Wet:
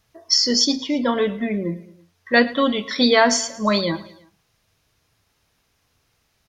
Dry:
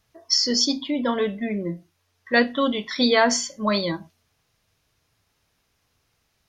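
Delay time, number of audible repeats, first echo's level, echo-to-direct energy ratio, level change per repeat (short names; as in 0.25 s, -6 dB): 0.11 s, 3, -19.5 dB, -18.0 dB, -4.5 dB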